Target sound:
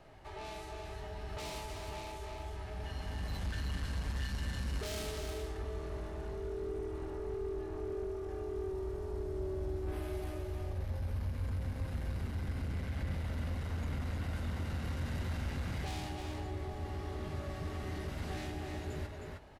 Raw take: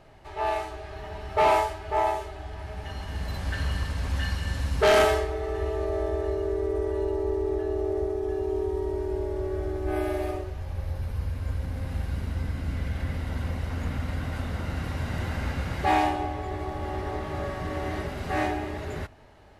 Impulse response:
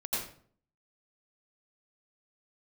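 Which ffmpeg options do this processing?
-filter_complex "[0:a]asoftclip=type=tanh:threshold=-28.5dB,asplit=2[a][b];[b]aecho=0:1:312:0.501[c];[a][c]amix=inputs=2:normalize=0,acrossover=split=310|3000[d][e][f];[e]acompressor=threshold=-42dB:ratio=6[g];[d][g][f]amix=inputs=3:normalize=0,asplit=2[h][i];[i]adelay=21,volume=-11.5dB[j];[h][j]amix=inputs=2:normalize=0,volume=-4dB"

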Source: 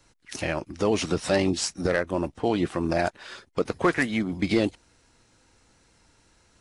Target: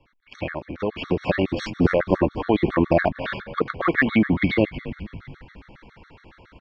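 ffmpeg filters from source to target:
-filter_complex "[0:a]lowpass=f=3.1k:w=0.5412,lowpass=f=3.1k:w=1.3066,acompressor=threshold=-27dB:ratio=6,asplit=6[a][b][c][d][e][f];[b]adelay=246,afreqshift=-67,volume=-14.5dB[g];[c]adelay=492,afreqshift=-134,volume=-19.7dB[h];[d]adelay=738,afreqshift=-201,volume=-24.9dB[i];[e]adelay=984,afreqshift=-268,volume=-30.1dB[j];[f]adelay=1230,afreqshift=-335,volume=-35.3dB[k];[a][g][h][i][j][k]amix=inputs=6:normalize=0,dynaudnorm=f=200:g=13:m=13dB,afftfilt=real='re*gt(sin(2*PI*7.2*pts/sr)*(1-2*mod(floor(b*sr/1024/1100),2)),0)':imag='im*gt(sin(2*PI*7.2*pts/sr)*(1-2*mod(floor(b*sr/1024/1100),2)),0)':win_size=1024:overlap=0.75,volume=4dB"

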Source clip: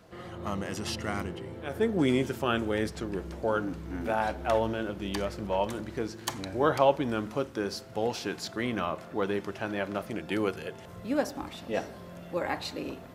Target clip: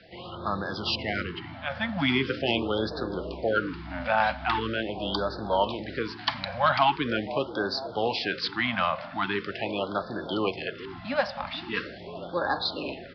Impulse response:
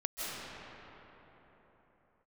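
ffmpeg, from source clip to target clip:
-filter_complex "[0:a]highshelf=f=3.4k:g=9.5,acrossover=split=120|780|3600[a][b][c][d];[b]asplit=9[e][f][g][h][i][j][k][l][m];[f]adelay=479,afreqshift=64,volume=-9.5dB[n];[g]adelay=958,afreqshift=128,volume=-13.5dB[o];[h]adelay=1437,afreqshift=192,volume=-17.5dB[p];[i]adelay=1916,afreqshift=256,volume=-21.5dB[q];[j]adelay=2395,afreqshift=320,volume=-25.6dB[r];[k]adelay=2874,afreqshift=384,volume=-29.6dB[s];[l]adelay=3353,afreqshift=448,volume=-33.6dB[t];[m]adelay=3832,afreqshift=512,volume=-37.6dB[u];[e][n][o][p][q][r][s][t][u]amix=inputs=9:normalize=0[v];[c]aeval=exprs='0.178*sin(PI/2*1.58*val(0)/0.178)':c=same[w];[a][v][w][d]amix=inputs=4:normalize=0,aresample=11025,aresample=44100,afftfilt=real='re*(1-between(b*sr/1024,350*pow(2500/350,0.5+0.5*sin(2*PI*0.42*pts/sr))/1.41,350*pow(2500/350,0.5+0.5*sin(2*PI*0.42*pts/sr))*1.41))':imag='im*(1-between(b*sr/1024,350*pow(2500/350,0.5+0.5*sin(2*PI*0.42*pts/sr))/1.41,350*pow(2500/350,0.5+0.5*sin(2*PI*0.42*pts/sr))*1.41))':win_size=1024:overlap=0.75"

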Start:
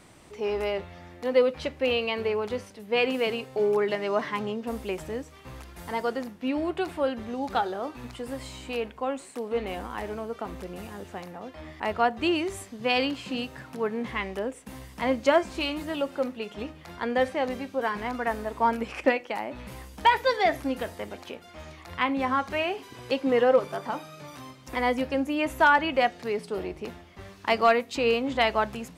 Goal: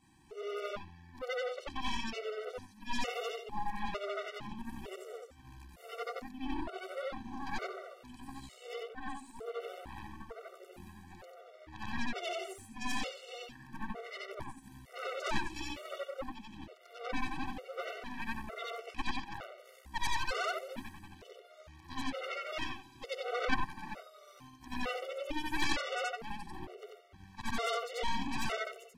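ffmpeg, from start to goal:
-af "afftfilt=real='re':imag='-im':win_size=8192:overlap=0.75,aeval=exprs='0.224*(cos(1*acos(clip(val(0)/0.224,-1,1)))-cos(1*PI/2))+0.112*(cos(3*acos(clip(val(0)/0.224,-1,1)))-cos(3*PI/2))+0.00708*(cos(6*acos(clip(val(0)/0.224,-1,1)))-cos(6*PI/2))+0.00316*(cos(7*acos(clip(val(0)/0.224,-1,1)))-cos(7*PI/2))+0.0398*(cos(8*acos(clip(val(0)/0.224,-1,1)))-cos(8*PI/2))':c=same,afftfilt=real='re*gt(sin(2*PI*1.1*pts/sr)*(1-2*mod(floor(b*sr/1024/380),2)),0)':imag='im*gt(sin(2*PI*1.1*pts/sr)*(1-2*mod(floor(b*sr/1024/380),2)),0)':win_size=1024:overlap=0.75,volume=-1dB"

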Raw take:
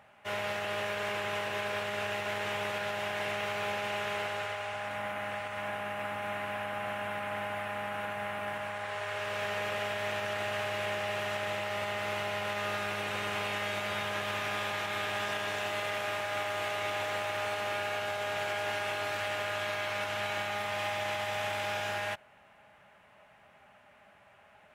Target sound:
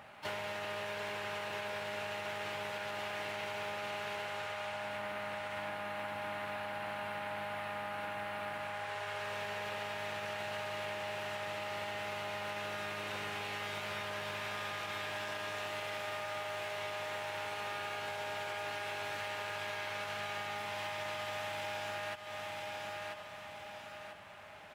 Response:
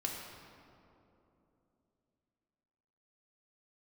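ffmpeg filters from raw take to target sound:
-filter_complex "[0:a]asplit=2[a][b];[b]asetrate=66075,aresample=44100,atempo=0.66742,volume=-10dB[c];[a][c]amix=inputs=2:normalize=0,aecho=1:1:989|1978|2967|3956:0.211|0.0803|0.0305|0.0116,acompressor=threshold=-43dB:ratio=6,volume=5dB"

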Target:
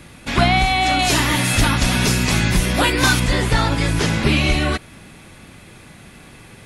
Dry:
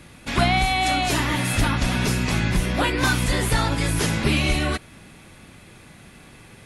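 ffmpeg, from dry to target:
-filter_complex "[0:a]acrossover=split=7100[a][b];[b]acompressor=threshold=-44dB:ratio=4:attack=1:release=60[c];[a][c]amix=inputs=2:normalize=0,asettb=1/sr,asplit=3[d][e][f];[d]atrim=end=0.994[g];[e]atrim=start=0.99:end=3.2,asetpts=PTS-STARTPTS,afade=t=in:d=0.004:c=qsin,afade=t=out:st=2.206:d=0.004:c=qsin,aemphasis=mode=production:type=50kf[h];[f]atrim=start=3.196[i];[g][h]acrossfade=d=0.004:c1=hsin:c2=qsin[j];[j][i]acrossfade=d=0.004:c1=qsin:c2=hsin,volume=4dB"

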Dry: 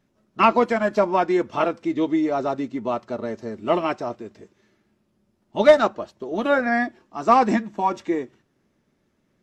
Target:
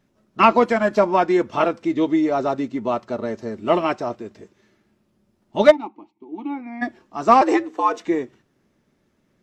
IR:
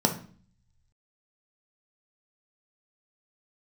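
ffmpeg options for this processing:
-filter_complex "[0:a]asplit=3[a][b][c];[a]afade=t=out:st=5.7:d=0.02[d];[b]asplit=3[e][f][g];[e]bandpass=f=300:t=q:w=8,volume=0dB[h];[f]bandpass=f=870:t=q:w=8,volume=-6dB[i];[g]bandpass=f=2.24k:t=q:w=8,volume=-9dB[j];[h][i][j]amix=inputs=3:normalize=0,afade=t=in:st=5.7:d=0.02,afade=t=out:st=6.81:d=0.02[k];[c]afade=t=in:st=6.81:d=0.02[l];[d][k][l]amix=inputs=3:normalize=0,asettb=1/sr,asplit=3[m][n][o];[m]atrim=end=7.414[p];[n]atrim=start=7.41:end=8.05,asetpts=PTS-STARTPTS,afade=t=in:d=0.004:c=qsin,afade=t=out:st=0.636:d=0.004:c=qsin,afreqshift=110[q];[o]atrim=start=8.046[r];[p][q]acrossfade=d=0.004:c1=hsin:c2=qsin[s];[s][r]acrossfade=d=0.004:c1=qsin:c2=hsin,volume=2.5dB"

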